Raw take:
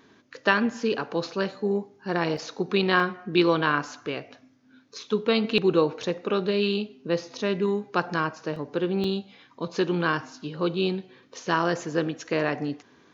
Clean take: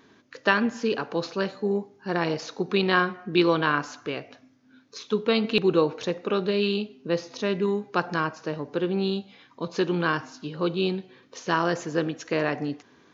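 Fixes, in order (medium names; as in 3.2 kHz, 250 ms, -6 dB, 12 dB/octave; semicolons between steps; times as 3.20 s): interpolate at 2.37/3.00/8.56/9.04 s, 3.6 ms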